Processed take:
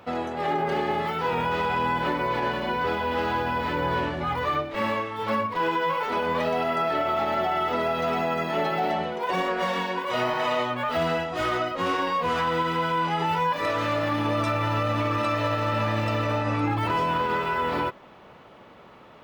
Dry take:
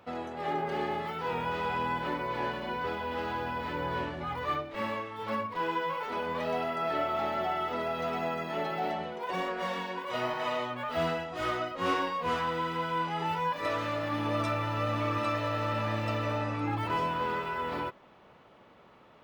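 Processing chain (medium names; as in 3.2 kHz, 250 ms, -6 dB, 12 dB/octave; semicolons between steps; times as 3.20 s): peak limiter -24.5 dBFS, peak gain reduction 6.5 dB; trim +8 dB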